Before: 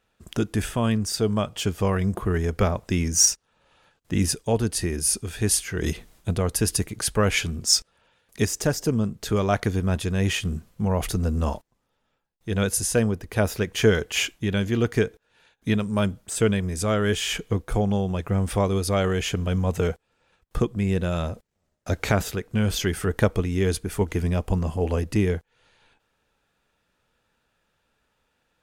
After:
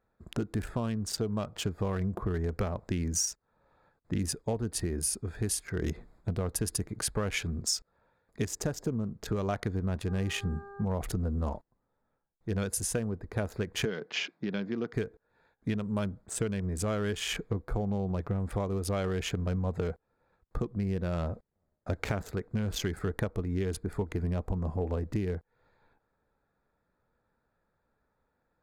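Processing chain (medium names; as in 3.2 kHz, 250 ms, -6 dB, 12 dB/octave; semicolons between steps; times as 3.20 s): local Wiener filter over 15 samples; 10.07–10.84 s: mains buzz 400 Hz, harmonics 4, -44 dBFS -4 dB/octave; compression 12:1, threshold -24 dBFS, peak gain reduction 12.5 dB; 13.85–14.93 s: elliptic band-pass 160–5200 Hz, stop band 40 dB; trim -3 dB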